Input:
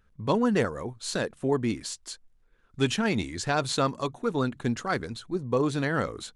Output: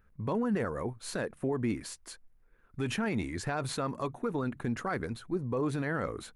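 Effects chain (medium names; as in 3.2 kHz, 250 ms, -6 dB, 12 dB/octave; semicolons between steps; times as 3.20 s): high-order bell 4.9 kHz -9 dB; peak limiter -23 dBFS, peak gain reduction 10.5 dB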